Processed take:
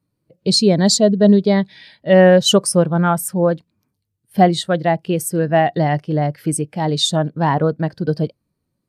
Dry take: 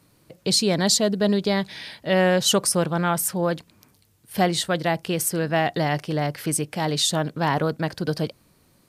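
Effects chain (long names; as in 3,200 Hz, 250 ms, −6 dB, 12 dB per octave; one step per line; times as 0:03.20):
every bin expanded away from the loudest bin 1.5 to 1
level +6.5 dB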